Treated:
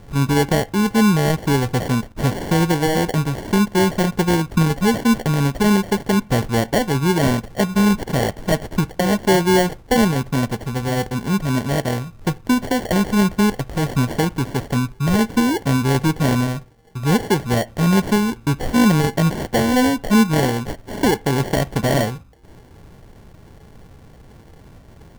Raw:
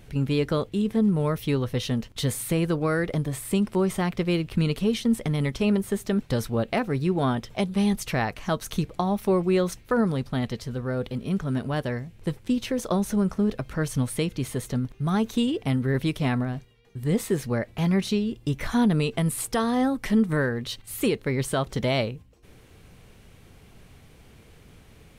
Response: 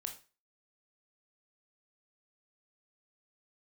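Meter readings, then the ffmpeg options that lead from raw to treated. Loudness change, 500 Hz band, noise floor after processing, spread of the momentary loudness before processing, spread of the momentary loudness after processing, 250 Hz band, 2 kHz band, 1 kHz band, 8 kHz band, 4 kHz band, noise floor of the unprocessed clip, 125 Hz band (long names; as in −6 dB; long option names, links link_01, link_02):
+7.0 dB, +6.0 dB, −45 dBFS, 7 LU, 7 LU, +7.0 dB, +9.0 dB, +10.0 dB, +7.5 dB, +7.5 dB, −52 dBFS, +7.0 dB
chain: -filter_complex "[0:a]acrusher=samples=35:mix=1:aa=0.000001,asplit=2[link_01][link_02];[1:a]atrim=start_sample=2205,lowpass=frequency=3100:width=0.5412,lowpass=frequency=3100:width=1.3066[link_03];[link_02][link_03]afir=irnorm=-1:irlink=0,volume=-13dB[link_04];[link_01][link_04]amix=inputs=2:normalize=0,volume=6dB"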